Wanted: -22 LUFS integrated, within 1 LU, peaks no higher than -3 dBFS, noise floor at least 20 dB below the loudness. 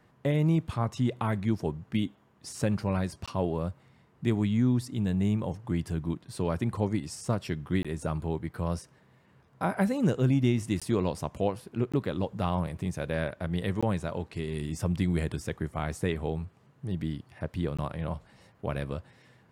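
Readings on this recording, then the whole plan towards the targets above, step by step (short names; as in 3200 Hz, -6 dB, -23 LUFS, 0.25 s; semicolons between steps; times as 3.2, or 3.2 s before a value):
dropouts 6; longest dropout 16 ms; loudness -30.5 LUFS; peak -13.0 dBFS; loudness target -22.0 LUFS
-> interpolate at 3.26/7.83/10.8/11.92/13.81/17.77, 16 ms; gain +8.5 dB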